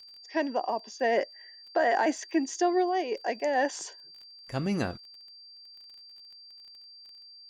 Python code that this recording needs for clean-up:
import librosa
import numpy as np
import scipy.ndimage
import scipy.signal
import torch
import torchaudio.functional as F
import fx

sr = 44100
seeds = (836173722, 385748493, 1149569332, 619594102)

y = fx.fix_declick_ar(x, sr, threshold=6.5)
y = fx.notch(y, sr, hz=4700.0, q=30.0)